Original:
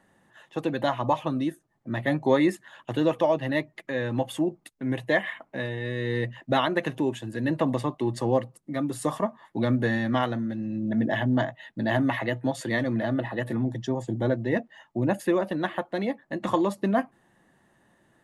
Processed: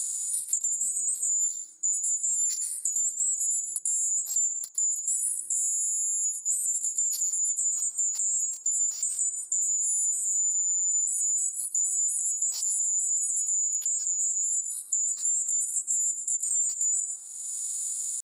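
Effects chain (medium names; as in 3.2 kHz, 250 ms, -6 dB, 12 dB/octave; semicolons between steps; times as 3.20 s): split-band scrambler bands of 4 kHz; in parallel at -7.5 dB: one-sided clip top -19.5 dBFS, bottom -15 dBFS; on the sum: pitch shift +9 st; high-pass 150 Hz 6 dB/octave; reverse; compression 6:1, threshold -33 dBFS, peak gain reduction 17.5 dB; reverse; reverberation RT60 1.1 s, pre-delay 109 ms, DRR 8 dB; peak limiter -29 dBFS, peak gain reduction 8.5 dB; high-order bell 6.3 kHz +10 dB; three bands compressed up and down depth 100%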